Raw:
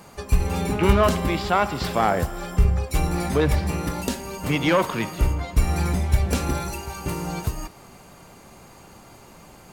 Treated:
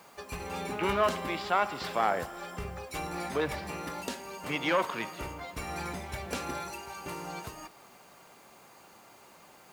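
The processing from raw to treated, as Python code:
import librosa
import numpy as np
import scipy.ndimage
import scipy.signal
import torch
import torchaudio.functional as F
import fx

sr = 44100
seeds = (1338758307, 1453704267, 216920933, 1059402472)

y = fx.highpass(x, sr, hz=650.0, slope=6)
y = fx.high_shelf(y, sr, hz=5300.0, db=-9.0)
y = fx.quant_dither(y, sr, seeds[0], bits=10, dither='triangular')
y = F.gain(torch.from_numpy(y), -4.0).numpy()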